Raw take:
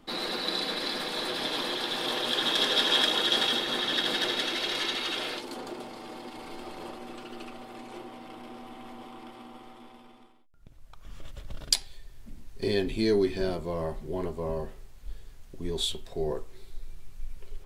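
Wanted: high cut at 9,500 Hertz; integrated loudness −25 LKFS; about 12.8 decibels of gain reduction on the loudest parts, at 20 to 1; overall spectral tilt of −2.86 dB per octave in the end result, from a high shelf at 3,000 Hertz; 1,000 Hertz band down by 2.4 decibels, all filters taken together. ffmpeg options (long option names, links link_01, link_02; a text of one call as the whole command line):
ffmpeg -i in.wav -af "lowpass=9500,equalizer=frequency=1000:width_type=o:gain=-4,highshelf=frequency=3000:gain=6,acompressor=threshold=-31dB:ratio=20,volume=10.5dB" out.wav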